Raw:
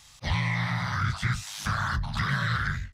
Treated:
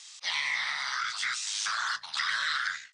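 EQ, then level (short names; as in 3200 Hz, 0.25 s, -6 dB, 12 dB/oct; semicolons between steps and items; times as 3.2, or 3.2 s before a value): HPF 1200 Hz 12 dB/oct; brick-wall FIR low-pass 9700 Hz; bell 5600 Hz +8.5 dB 2.4 oct; -1.5 dB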